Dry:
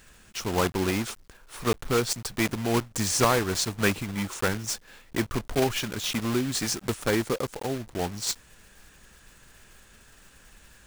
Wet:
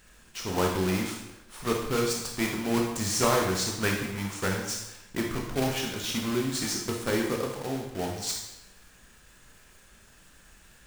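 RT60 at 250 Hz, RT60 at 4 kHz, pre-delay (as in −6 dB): 0.90 s, 0.80 s, 17 ms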